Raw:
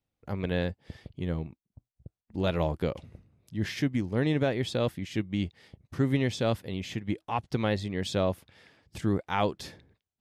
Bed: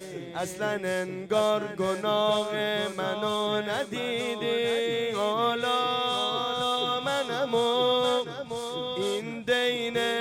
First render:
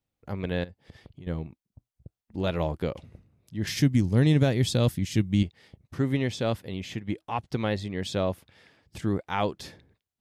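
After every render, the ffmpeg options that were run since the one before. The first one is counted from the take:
-filter_complex "[0:a]asettb=1/sr,asplit=3[s0][s1][s2];[s0]atrim=end=0.644[s3];[s1]atrim=start=0.64:end=1.27,asetpts=PTS-STARTPTS,afade=t=in:d=0.004:c=qsin,afade=t=out:st=0.626:d=0.004:c=qsin,acompressor=threshold=0.00891:ratio=6:attack=3.2:release=140:knee=1:detection=peak[s4];[s2]atrim=start=1.266[s5];[s3][s4]acrossfade=d=0.004:c1=hsin:c2=qsin[s6];[s6][s5]acrossfade=d=0.004:c1=qsin:c2=hsin,asettb=1/sr,asplit=3[s7][s8][s9];[s7]atrim=end=3.674[s10];[s8]atrim=start=3.67:end=5.43,asetpts=PTS-STARTPTS,afade=t=in:d=0.004:c=qsin,afade=t=out:st=1.756:d=0.004:c=qsin,bass=f=250:g=10,treble=f=4000:g=12[s11];[s9]atrim=start=5.426[s12];[s10][s11]acrossfade=d=0.004:c1=hsin:c2=qsin[s13];[s13][s12]acrossfade=d=0.004:c1=qsin:c2=hsin"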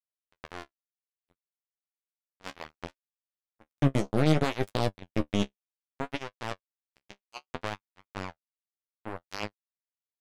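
-af "acrusher=bits=2:mix=0:aa=0.5,flanger=delay=9.8:depth=5.1:regen=32:speed=0.63:shape=sinusoidal"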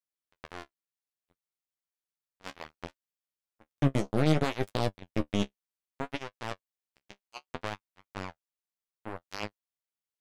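-af "volume=0.841"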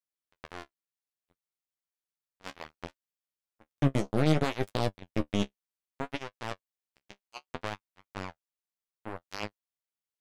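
-af anull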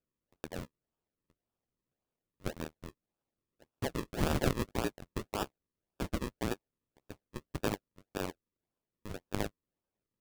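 -af "highpass=f=1700:t=q:w=5.5,acrusher=samples=41:mix=1:aa=0.000001:lfo=1:lforange=41:lforate=1.8"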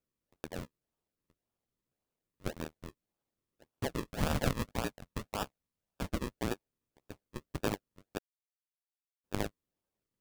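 -filter_complex "[0:a]asettb=1/sr,asplit=3[s0][s1][s2];[s0]atrim=end=4.064[s3];[s1]atrim=start=4.06:end=6.08,asetpts=PTS-STARTPTS,afade=t=in:d=0.004:c=qsin,afade=t=out:st=2.016:d=0.004:c=qsin,equalizer=f=360:w=3.8:g=-10[s4];[s2]atrim=start=6.076[s5];[s3][s4]acrossfade=d=0.004:c1=hsin:c2=qsin[s6];[s6][s5]acrossfade=d=0.004:c1=qsin:c2=hsin,asplit=3[s7][s8][s9];[s7]atrim=end=8.19,asetpts=PTS-STARTPTS,afade=t=out:st=8.186:d=0.004:c=hsin[s10];[s8]atrim=start=8.19:end=9.24,asetpts=PTS-STARTPTS,volume=0[s11];[s9]atrim=start=9.24,asetpts=PTS-STARTPTS,afade=t=in:d=0.004:c=hsin[s12];[s10][s11][s12]concat=n=3:v=0:a=1"

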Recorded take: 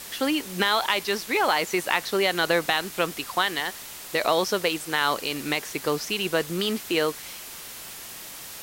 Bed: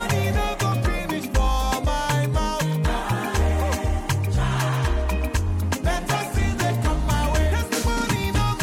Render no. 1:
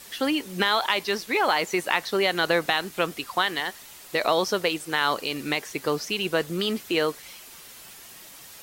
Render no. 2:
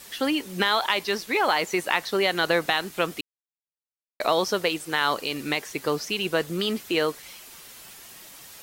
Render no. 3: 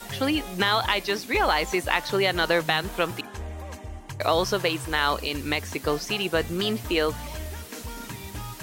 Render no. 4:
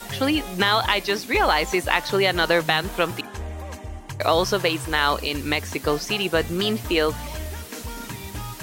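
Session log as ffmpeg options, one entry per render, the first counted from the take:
-af "afftdn=nr=7:nf=-40"
-filter_complex "[0:a]asplit=3[s0][s1][s2];[s0]atrim=end=3.21,asetpts=PTS-STARTPTS,afade=t=out:st=3.206:d=0.004:c=hsin[s3];[s1]atrim=start=3.21:end=4.2,asetpts=PTS-STARTPTS,volume=0[s4];[s2]atrim=start=4.2,asetpts=PTS-STARTPTS,afade=t=in:d=0.004:c=hsin[s5];[s3][s4][s5]concat=n=3:v=0:a=1"
-filter_complex "[1:a]volume=0.178[s0];[0:a][s0]amix=inputs=2:normalize=0"
-af "volume=1.41"

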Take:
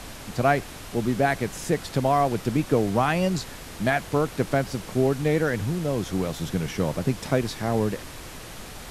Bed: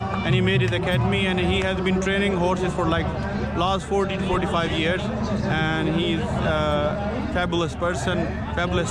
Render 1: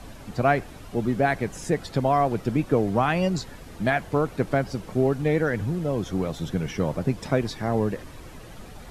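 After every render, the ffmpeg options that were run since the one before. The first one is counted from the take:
-af "afftdn=nr=10:nf=-40"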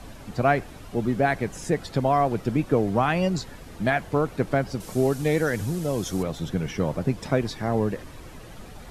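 -filter_complex "[0:a]asettb=1/sr,asplit=3[s0][s1][s2];[s0]atrim=end=4.804[s3];[s1]atrim=start=4.8:end=6.23,asetpts=PTS-STARTPTS,afade=t=in:d=0.004:c=qsin,afade=t=out:st=1.426:d=0.004:c=qsin,bass=f=250:g=-1,treble=f=4000:g=13[s4];[s2]atrim=start=6.226[s5];[s3][s4]acrossfade=d=0.004:c1=hsin:c2=qsin[s6];[s6][s5]acrossfade=d=0.004:c1=qsin:c2=hsin"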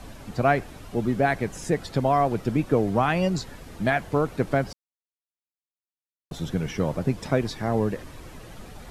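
-filter_complex "[0:a]asplit=3[s0][s1][s2];[s0]atrim=end=4.73,asetpts=PTS-STARTPTS,afade=t=out:st=4.726:d=0.004:c=hsin[s3];[s1]atrim=start=4.73:end=6.31,asetpts=PTS-STARTPTS,volume=0[s4];[s2]atrim=start=6.31,asetpts=PTS-STARTPTS,afade=t=in:d=0.004:c=hsin[s5];[s3][s4][s5]concat=n=3:v=0:a=1"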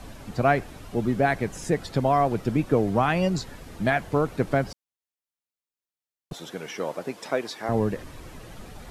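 -filter_complex "[0:a]asettb=1/sr,asplit=3[s0][s1][s2];[s0]atrim=end=6.334[s3];[s1]atrim=start=6.33:end=7.69,asetpts=PTS-STARTPTS,afade=t=in:d=0.004:c=qsin,afade=t=out:st=1.356:d=0.004:c=qsin,highpass=410[s4];[s2]atrim=start=7.686[s5];[s3][s4]acrossfade=d=0.004:c1=hsin:c2=qsin[s6];[s6][s5]acrossfade=d=0.004:c1=qsin:c2=hsin"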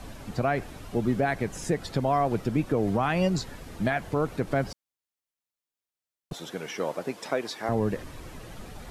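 -af "alimiter=limit=0.188:level=0:latency=1:release=123"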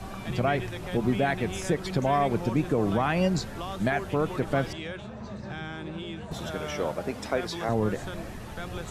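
-filter_complex "[1:a]volume=0.188[s0];[0:a][s0]amix=inputs=2:normalize=0"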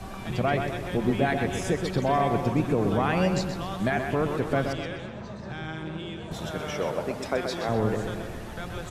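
-filter_complex "[0:a]asplit=2[s0][s1];[s1]adelay=127,lowpass=f=4600:p=1,volume=0.501,asplit=2[s2][s3];[s3]adelay=127,lowpass=f=4600:p=1,volume=0.52,asplit=2[s4][s5];[s5]adelay=127,lowpass=f=4600:p=1,volume=0.52,asplit=2[s6][s7];[s7]adelay=127,lowpass=f=4600:p=1,volume=0.52,asplit=2[s8][s9];[s9]adelay=127,lowpass=f=4600:p=1,volume=0.52,asplit=2[s10][s11];[s11]adelay=127,lowpass=f=4600:p=1,volume=0.52[s12];[s0][s2][s4][s6][s8][s10][s12]amix=inputs=7:normalize=0"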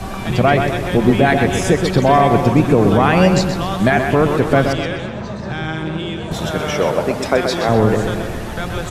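-af "volume=3.98,alimiter=limit=0.891:level=0:latency=1"

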